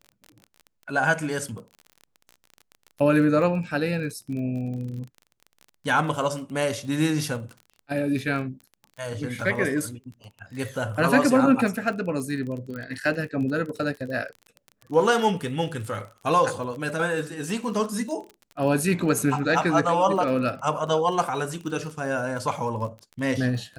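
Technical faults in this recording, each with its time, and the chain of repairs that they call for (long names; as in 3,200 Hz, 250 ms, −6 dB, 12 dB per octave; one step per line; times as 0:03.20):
surface crackle 31 per second −33 dBFS
0:12.76: click −24 dBFS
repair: click removal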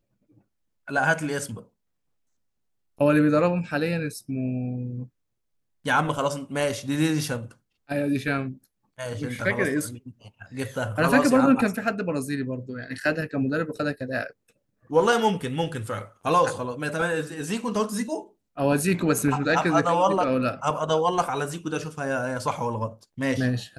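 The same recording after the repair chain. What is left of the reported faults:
none of them is left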